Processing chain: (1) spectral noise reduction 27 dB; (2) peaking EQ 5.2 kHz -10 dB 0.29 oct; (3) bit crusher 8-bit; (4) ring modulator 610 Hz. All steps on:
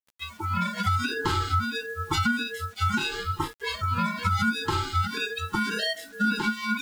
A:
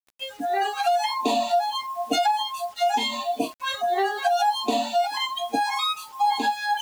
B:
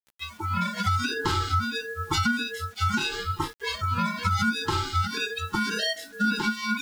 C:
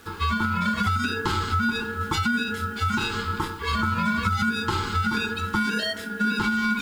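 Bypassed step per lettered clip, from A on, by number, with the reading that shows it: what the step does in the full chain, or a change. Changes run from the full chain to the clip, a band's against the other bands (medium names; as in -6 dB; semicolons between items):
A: 4, crest factor change -2.5 dB; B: 2, 8 kHz band +2.5 dB; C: 1, 250 Hz band +2.5 dB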